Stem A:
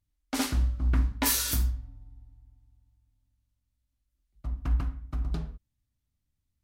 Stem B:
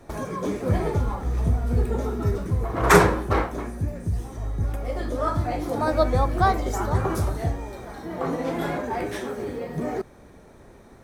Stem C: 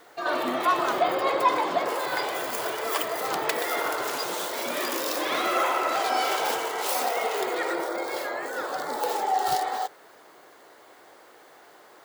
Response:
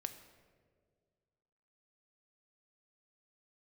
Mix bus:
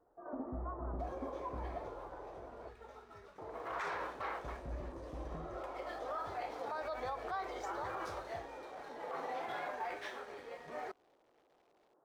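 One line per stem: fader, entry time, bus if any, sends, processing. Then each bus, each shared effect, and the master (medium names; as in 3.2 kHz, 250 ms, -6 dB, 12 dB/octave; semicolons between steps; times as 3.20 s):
-1.5 dB, 0.00 s, no send, compression 1.5:1, threshold -54 dBFS, peak gain reduction 12 dB; rippled Chebyshev low-pass 850 Hz, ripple 6 dB
3.25 s -16.5 dB -> 3.85 s -7 dB, 0.90 s, no send, three-band isolator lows -23 dB, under 560 Hz, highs -23 dB, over 5.2 kHz; crossover distortion -53 dBFS
-15.5 dB, 0.00 s, muted 2.69–3.38 s, no send, Gaussian low-pass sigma 8.7 samples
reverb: none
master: peak limiter -31.5 dBFS, peak gain reduction 17 dB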